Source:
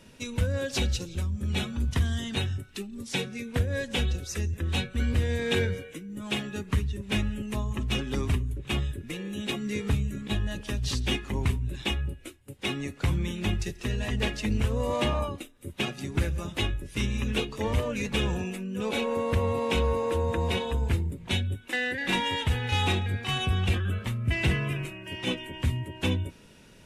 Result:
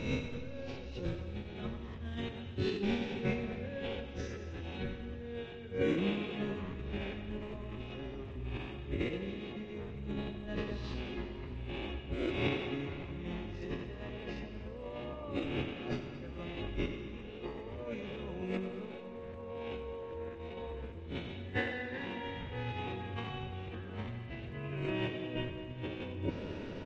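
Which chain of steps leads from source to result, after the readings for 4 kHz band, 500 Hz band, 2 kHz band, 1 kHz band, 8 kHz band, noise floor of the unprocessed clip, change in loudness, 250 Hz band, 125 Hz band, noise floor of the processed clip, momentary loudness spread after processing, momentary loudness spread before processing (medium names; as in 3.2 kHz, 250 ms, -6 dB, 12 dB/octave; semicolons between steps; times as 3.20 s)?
-14.0 dB, -6.5 dB, -10.5 dB, -10.5 dB, under -20 dB, -52 dBFS, -10.0 dB, -6.5 dB, -12.5 dB, -46 dBFS, 9 LU, 6 LU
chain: reverse spectral sustain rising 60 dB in 0.84 s; peaking EQ 460 Hz +7.5 dB 1.8 oct; peak limiter -19 dBFS, peak gain reduction 10 dB; compressor with a negative ratio -34 dBFS, ratio -0.5; Gaussian low-pass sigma 2.2 samples; random-step tremolo; crackle 380 per s -67 dBFS; on a send: multi-tap echo 93/224 ms -12/-16.5 dB; on the sum: algorithmic reverb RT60 3.1 s, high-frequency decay 0.85×, pre-delay 65 ms, DRR 9 dB; MP3 48 kbps 44.1 kHz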